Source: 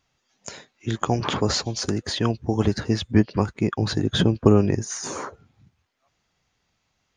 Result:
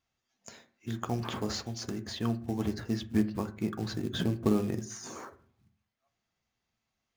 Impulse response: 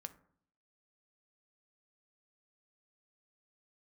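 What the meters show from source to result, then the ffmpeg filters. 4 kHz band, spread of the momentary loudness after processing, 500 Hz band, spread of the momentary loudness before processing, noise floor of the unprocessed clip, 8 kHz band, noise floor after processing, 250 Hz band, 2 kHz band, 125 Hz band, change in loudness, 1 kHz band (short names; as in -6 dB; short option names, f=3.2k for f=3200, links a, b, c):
-12.0 dB, 17 LU, -12.0 dB, 16 LU, -73 dBFS, -11.5 dB, -85 dBFS, -8.5 dB, -11.0 dB, -11.5 dB, -10.0 dB, -11.5 dB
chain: -filter_complex "[0:a]acrusher=bits=5:mode=log:mix=0:aa=0.000001[a];[1:a]atrim=start_sample=2205,asetrate=57330,aresample=44100[b];[a][b]afir=irnorm=-1:irlink=0,volume=-4.5dB"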